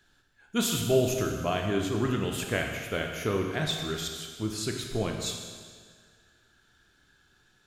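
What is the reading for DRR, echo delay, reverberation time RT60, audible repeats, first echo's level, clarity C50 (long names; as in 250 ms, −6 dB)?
2.0 dB, no echo audible, 1.8 s, no echo audible, no echo audible, 4.0 dB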